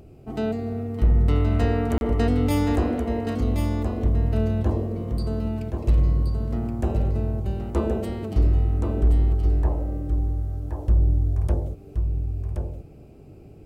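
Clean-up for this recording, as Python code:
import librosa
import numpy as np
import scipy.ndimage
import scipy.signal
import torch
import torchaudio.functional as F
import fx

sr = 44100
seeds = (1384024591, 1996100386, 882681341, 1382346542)

y = fx.fix_declip(x, sr, threshold_db=-12.0)
y = fx.fix_interpolate(y, sr, at_s=(1.98,), length_ms=31.0)
y = fx.fix_echo_inverse(y, sr, delay_ms=1074, level_db=-6.0)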